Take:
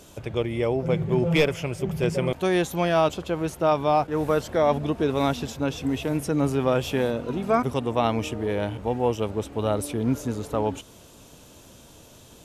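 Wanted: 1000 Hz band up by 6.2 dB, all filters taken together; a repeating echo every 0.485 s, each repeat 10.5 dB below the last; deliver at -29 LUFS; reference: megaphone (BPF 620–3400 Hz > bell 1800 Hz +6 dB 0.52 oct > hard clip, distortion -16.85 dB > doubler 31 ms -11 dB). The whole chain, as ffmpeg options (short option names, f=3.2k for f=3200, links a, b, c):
-filter_complex "[0:a]highpass=620,lowpass=3.4k,equalizer=f=1k:t=o:g=9,equalizer=f=1.8k:t=o:w=0.52:g=6,aecho=1:1:485|970|1455:0.299|0.0896|0.0269,asoftclip=type=hard:threshold=-12dB,asplit=2[a][b];[b]adelay=31,volume=-11dB[c];[a][c]amix=inputs=2:normalize=0,volume=-4dB"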